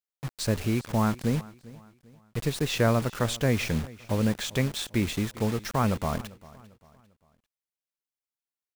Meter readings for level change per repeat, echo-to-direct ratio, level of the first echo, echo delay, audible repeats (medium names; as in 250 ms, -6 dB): -8.0 dB, -20.0 dB, -20.5 dB, 397 ms, 2